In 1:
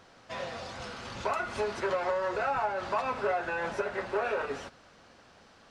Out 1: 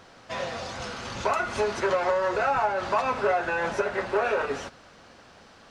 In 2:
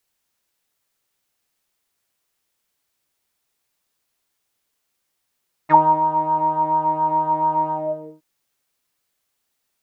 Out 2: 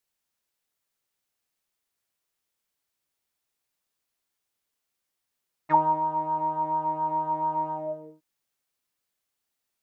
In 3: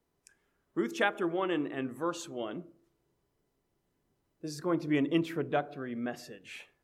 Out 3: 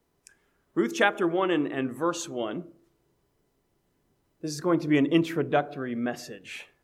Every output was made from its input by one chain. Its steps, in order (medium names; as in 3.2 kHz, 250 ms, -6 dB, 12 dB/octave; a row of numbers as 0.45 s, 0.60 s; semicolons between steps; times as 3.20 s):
dynamic bell 6.3 kHz, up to +4 dB, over -59 dBFS, Q 4.4; normalise loudness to -27 LUFS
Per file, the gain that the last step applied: +5.5 dB, -8.0 dB, +6.0 dB